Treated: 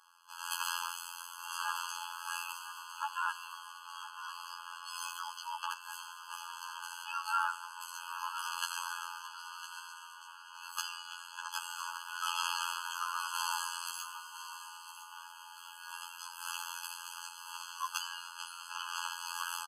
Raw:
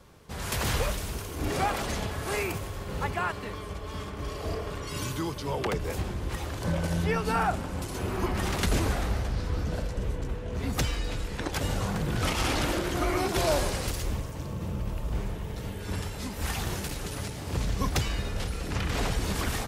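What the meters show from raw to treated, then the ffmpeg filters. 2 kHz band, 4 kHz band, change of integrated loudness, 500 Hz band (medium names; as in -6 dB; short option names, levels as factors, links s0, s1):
-5.0 dB, -4.0 dB, -8.5 dB, under -40 dB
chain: -af "afftfilt=real='hypot(re,im)*cos(PI*b)':imag='0':win_size=2048:overlap=0.75,aecho=1:1:1006|2012|3018:0.251|0.0779|0.0241,afftfilt=real='re*eq(mod(floor(b*sr/1024/840),2),1)':imag='im*eq(mod(floor(b*sr/1024/840),2),1)':win_size=1024:overlap=0.75,volume=1.19"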